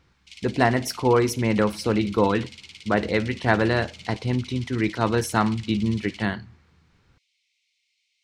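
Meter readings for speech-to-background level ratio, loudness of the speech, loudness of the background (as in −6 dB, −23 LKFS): 18.5 dB, −24.0 LKFS, −42.5 LKFS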